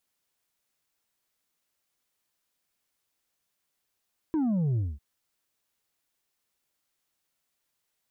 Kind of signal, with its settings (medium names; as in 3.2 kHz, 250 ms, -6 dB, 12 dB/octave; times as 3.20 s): sub drop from 330 Hz, over 0.65 s, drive 4 dB, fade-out 0.22 s, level -24 dB